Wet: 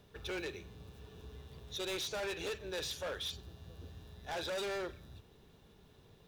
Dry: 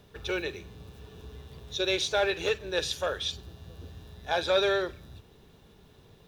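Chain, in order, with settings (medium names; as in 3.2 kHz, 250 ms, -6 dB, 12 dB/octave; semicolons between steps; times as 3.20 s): hard clipper -30.5 dBFS, distortion -6 dB; trim -5.5 dB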